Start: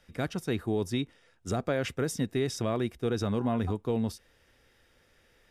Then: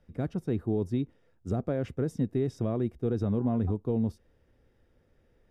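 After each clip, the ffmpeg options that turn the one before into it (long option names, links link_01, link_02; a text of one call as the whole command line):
ffmpeg -i in.wav -af "tiltshelf=frequency=970:gain=10,volume=-7dB" out.wav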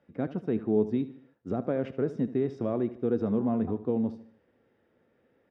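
ffmpeg -i in.wav -af "flanger=delay=3.5:depth=1.2:regen=82:speed=0.72:shape=sinusoidal,highpass=190,lowpass=2800,aecho=1:1:75|150|225|300:0.178|0.0782|0.0344|0.0151,volume=7dB" out.wav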